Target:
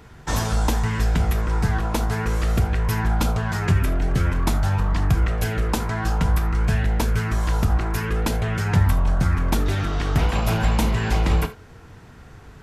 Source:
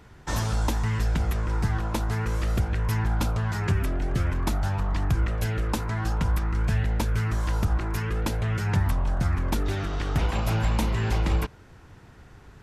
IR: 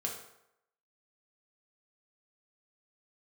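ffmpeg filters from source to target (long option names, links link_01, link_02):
-filter_complex "[0:a]asplit=2[link_01][link_02];[1:a]atrim=start_sample=2205,atrim=end_sample=3969,highshelf=frequency=12000:gain=6[link_03];[link_02][link_03]afir=irnorm=-1:irlink=0,volume=-2dB[link_04];[link_01][link_04]amix=inputs=2:normalize=0"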